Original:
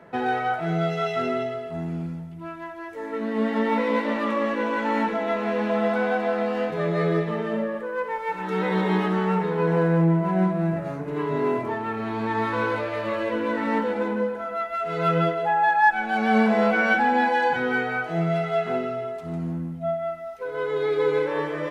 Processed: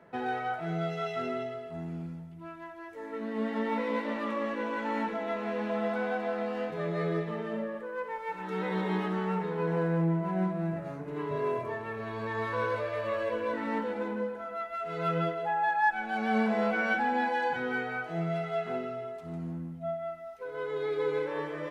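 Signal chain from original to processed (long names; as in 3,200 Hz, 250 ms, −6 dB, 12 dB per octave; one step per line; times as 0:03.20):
0:11.31–0:13.54: comb filter 1.8 ms, depth 68%
level −8 dB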